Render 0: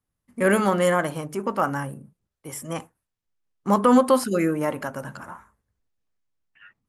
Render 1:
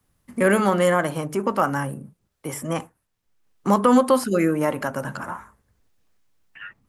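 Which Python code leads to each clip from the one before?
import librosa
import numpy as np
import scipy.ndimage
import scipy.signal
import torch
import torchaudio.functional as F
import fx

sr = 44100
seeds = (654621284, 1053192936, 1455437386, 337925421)

y = fx.band_squash(x, sr, depth_pct=40)
y = F.gain(torch.from_numpy(y), 2.0).numpy()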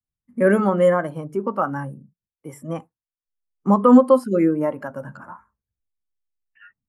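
y = fx.spectral_expand(x, sr, expansion=1.5)
y = F.gain(torch.from_numpy(y), 2.0).numpy()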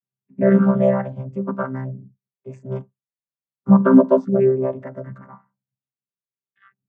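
y = fx.chord_vocoder(x, sr, chord='bare fifth', root=48)
y = F.gain(torch.from_numpy(y), 2.0).numpy()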